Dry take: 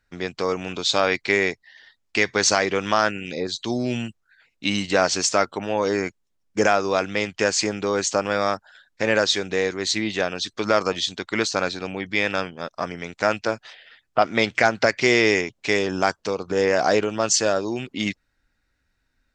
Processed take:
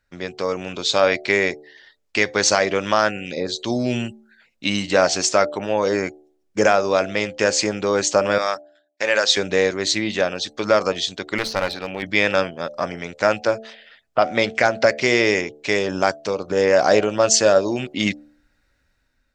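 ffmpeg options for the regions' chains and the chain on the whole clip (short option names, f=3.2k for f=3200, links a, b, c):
-filter_complex "[0:a]asettb=1/sr,asplit=3[a][b][c];[a]atrim=end=8.384[d];[b]atrim=start=8.38:end=9.37,asetpts=PTS-STARTPTS,afade=t=in:d=0.004:c=qsin,afade=t=out:st=0.986:d=0.004:c=qsin,highpass=f=1.2k:p=1,agate=range=-20dB:threshold=-49dB:ratio=16:release=100:detection=peak[e];[c]atrim=start=9.366[f];[d][e]acrossfade=d=0.004:c1=hsin:c2=qsin[g];[g][f]acrossfade=d=0.004:c1=qsin:c2=hsin,asettb=1/sr,asplit=3[h][i][j];[h]atrim=end=11.384[k];[i]atrim=start=11.38:end=12.03,asetpts=PTS-STARTPTS,afade=t=in:d=0.004:c=qsin,afade=t=out:st=0.646:d=0.004:c=qsin,lowpass=f=5.2k:w=0.5412,lowpass=f=5.2k:w=1.3066,lowshelf=f=480:g=-6,aeval=exprs='clip(val(0),-1,0.0335)':c=same[l];[j]atrim=start=12.026[m];[k][l]acrossfade=d=0.004:c1=hsin:c2=qsin[n];[n][m]acrossfade=d=0.004:c1=qsin:c2=hsin,equalizer=f=570:t=o:w=0.2:g=7,bandreject=f=74.13:t=h:w=4,bandreject=f=148.26:t=h:w=4,bandreject=f=222.39:t=h:w=4,bandreject=f=296.52:t=h:w=4,bandreject=f=370.65:t=h:w=4,bandreject=f=444.78:t=h:w=4,bandreject=f=518.91:t=h:w=4,bandreject=f=593.04:t=h:w=4,bandreject=f=667.17:t=h:w=4,bandreject=f=741.3:t=h:w=4,bandreject=f=815.43:t=h:w=4,dynaudnorm=f=230:g=7:m=11.5dB,volume=-1dB"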